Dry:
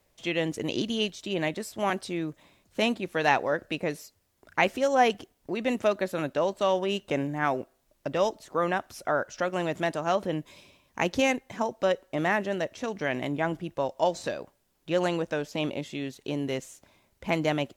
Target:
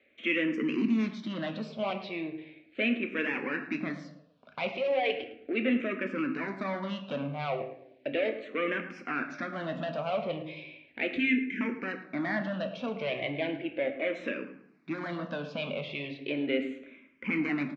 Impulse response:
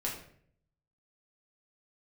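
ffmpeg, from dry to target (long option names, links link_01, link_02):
-filter_complex "[0:a]asettb=1/sr,asplit=3[link_01][link_02][link_03];[link_01]atrim=end=1.934[link_04];[link_02]atrim=start=1.93:end=3.08,asetpts=PTS-STARTPTS,afade=type=in:duration=0.004:curve=qsin,afade=type=out:start_time=1.146:duration=0.004:curve=qsin,aeval=exprs='if(lt(val(0),0),0.447*val(0),val(0))':channel_layout=same[link_05];[link_03]atrim=start=3.076[link_06];[link_04][link_05]acrossfade=duration=0.004:curve1=hsin:curve2=qsin[link_07];[link_07][link_06]acrossfade=duration=0.004:curve1=qsin:curve2=hsin,alimiter=limit=-17.5dB:level=0:latency=1:release=15,asoftclip=type=tanh:threshold=-28dB,asettb=1/sr,asplit=3[link_08][link_09][link_10];[link_08]atrim=end=11.114[link_11];[link_09]atrim=start=11.11:end=11.61,asetpts=PTS-STARTPTS,afade=type=in:duration=0.004:curve=qsin,afade=type=out:start_time=0.496:duration=0.004:curve=qsin,asuperstop=centerf=830:order=20:qfactor=0.78[link_12];[link_10]atrim=start=11.606[link_13];[link_11][link_12]acrossfade=duration=0.004:curve1=hsin:curve2=qsin[link_14];[link_14][link_13]acrossfade=duration=0.004:curve1=qsin:curve2=hsin,highpass=210,equalizer=frequency=250:width_type=q:width=4:gain=8,equalizer=frequency=410:width_type=q:width=4:gain=-3,equalizer=frequency=860:width_type=q:width=4:gain=-8,equalizer=frequency=2300:width_type=q:width=4:gain=10,lowpass=frequency=3600:width=0.5412,lowpass=frequency=3600:width=1.3066,asplit=2[link_15][link_16];[link_16]adelay=108,lowpass=frequency=2000:poles=1,volume=-12dB,asplit=2[link_17][link_18];[link_18]adelay=108,lowpass=frequency=2000:poles=1,volume=0.41,asplit=2[link_19][link_20];[link_20]adelay=108,lowpass=frequency=2000:poles=1,volume=0.41,asplit=2[link_21][link_22];[link_22]adelay=108,lowpass=frequency=2000:poles=1,volume=0.41[link_23];[link_15][link_17][link_19][link_21][link_23]amix=inputs=5:normalize=0,asplit=2[link_24][link_25];[1:a]atrim=start_sample=2205[link_26];[link_25][link_26]afir=irnorm=-1:irlink=0,volume=-5dB[link_27];[link_24][link_27]amix=inputs=2:normalize=0,asplit=2[link_28][link_29];[link_29]afreqshift=-0.36[link_30];[link_28][link_30]amix=inputs=2:normalize=1,volume=1dB"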